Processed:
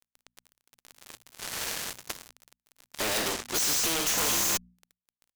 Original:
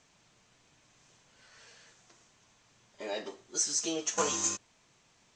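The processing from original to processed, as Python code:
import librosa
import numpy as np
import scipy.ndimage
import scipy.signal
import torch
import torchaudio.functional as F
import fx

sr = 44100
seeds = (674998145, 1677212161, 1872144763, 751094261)

y = fx.fuzz(x, sr, gain_db=48.0, gate_db=-56.0)
y = fx.hum_notches(y, sr, base_hz=60, count=4)
y = fx.spectral_comp(y, sr, ratio=2.0)
y = y * 10.0 ** (-6.0 / 20.0)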